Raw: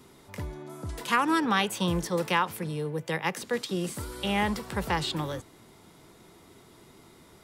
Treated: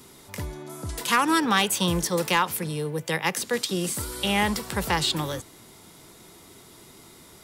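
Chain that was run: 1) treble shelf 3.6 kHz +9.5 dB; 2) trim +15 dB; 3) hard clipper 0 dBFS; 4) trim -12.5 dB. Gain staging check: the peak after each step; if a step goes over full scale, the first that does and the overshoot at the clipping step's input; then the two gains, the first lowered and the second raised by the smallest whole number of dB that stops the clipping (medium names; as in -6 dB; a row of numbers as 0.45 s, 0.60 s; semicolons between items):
-9.0 dBFS, +6.0 dBFS, 0.0 dBFS, -12.5 dBFS; step 2, 6.0 dB; step 2 +9 dB, step 4 -6.5 dB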